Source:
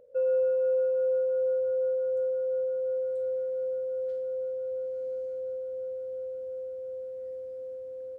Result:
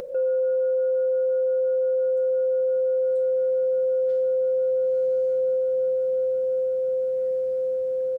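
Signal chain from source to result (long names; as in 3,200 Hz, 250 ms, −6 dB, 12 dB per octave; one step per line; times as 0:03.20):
comb filter 5.5 ms, depth 75%
in parallel at +2 dB: upward compression, threshold −25 dBFS
on the sum: brickwall limiter −19 dBFS, peak gain reduction 9 dB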